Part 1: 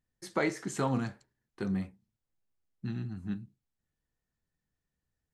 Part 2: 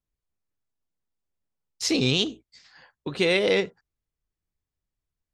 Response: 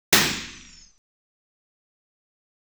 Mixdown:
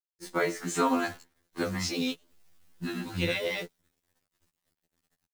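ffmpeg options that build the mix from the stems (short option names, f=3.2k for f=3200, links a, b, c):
-filter_complex "[0:a]equalizer=f=68:t=o:w=1.3:g=-3.5,dynaudnorm=f=520:g=3:m=12dB,volume=2.5dB,asplit=2[a][b];[1:a]highpass=48,volume=-5dB[c];[b]apad=whole_len=235264[d];[c][d]sidechaingate=range=-34dB:threshold=-54dB:ratio=16:detection=peak[e];[a][e]amix=inputs=2:normalize=0,acrossover=split=490[f][g];[f]acompressor=threshold=-26dB:ratio=6[h];[h][g]amix=inputs=2:normalize=0,acrusher=bits=8:dc=4:mix=0:aa=0.000001,afftfilt=real='re*2*eq(mod(b,4),0)':imag='im*2*eq(mod(b,4),0)':win_size=2048:overlap=0.75"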